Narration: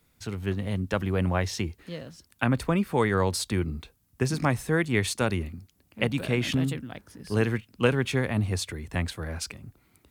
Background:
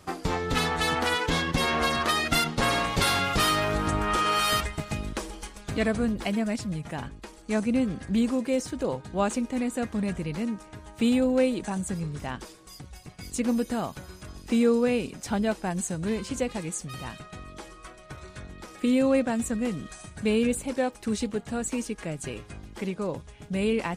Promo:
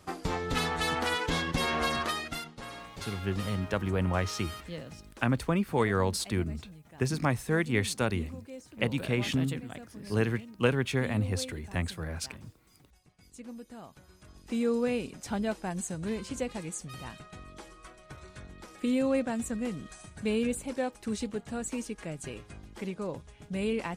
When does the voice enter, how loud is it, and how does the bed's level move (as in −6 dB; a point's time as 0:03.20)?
2.80 s, −3.0 dB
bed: 0:01.99 −4 dB
0:02.55 −18.5 dB
0:13.67 −18.5 dB
0:14.80 −5 dB